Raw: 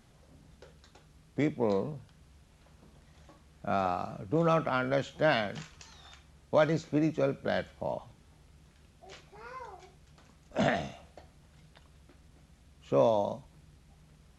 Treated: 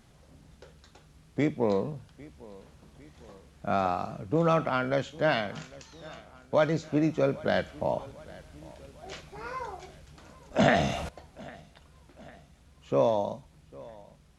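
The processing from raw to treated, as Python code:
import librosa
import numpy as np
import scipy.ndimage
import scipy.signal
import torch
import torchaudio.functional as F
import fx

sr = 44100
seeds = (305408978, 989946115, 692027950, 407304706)

p1 = fx.rider(x, sr, range_db=5, speed_s=2.0)
p2 = p1 + fx.echo_feedback(p1, sr, ms=802, feedback_pct=55, wet_db=-21.5, dry=0)
p3 = fx.env_flatten(p2, sr, amount_pct=50, at=(10.59, 11.09))
y = p3 * 10.0 ** (2.5 / 20.0)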